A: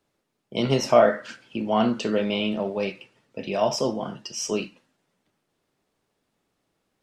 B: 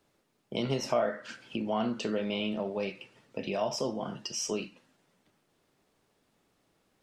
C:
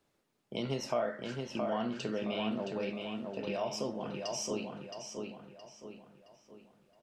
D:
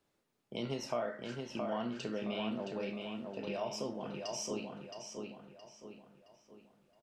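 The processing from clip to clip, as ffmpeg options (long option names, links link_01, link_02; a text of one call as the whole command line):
ffmpeg -i in.wav -af "acompressor=threshold=-40dB:ratio=2,volume=3dB" out.wav
ffmpeg -i in.wav -filter_complex "[0:a]asplit=2[link_01][link_02];[link_02]adelay=669,lowpass=frequency=4300:poles=1,volume=-4dB,asplit=2[link_03][link_04];[link_04]adelay=669,lowpass=frequency=4300:poles=1,volume=0.44,asplit=2[link_05][link_06];[link_06]adelay=669,lowpass=frequency=4300:poles=1,volume=0.44,asplit=2[link_07][link_08];[link_08]adelay=669,lowpass=frequency=4300:poles=1,volume=0.44,asplit=2[link_09][link_10];[link_10]adelay=669,lowpass=frequency=4300:poles=1,volume=0.44,asplit=2[link_11][link_12];[link_12]adelay=669,lowpass=frequency=4300:poles=1,volume=0.44[link_13];[link_01][link_03][link_05][link_07][link_09][link_11][link_13]amix=inputs=7:normalize=0,volume=-4.5dB" out.wav
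ffmpeg -i in.wav -filter_complex "[0:a]asplit=2[link_01][link_02];[link_02]adelay=34,volume=-12dB[link_03];[link_01][link_03]amix=inputs=2:normalize=0,volume=-3dB" out.wav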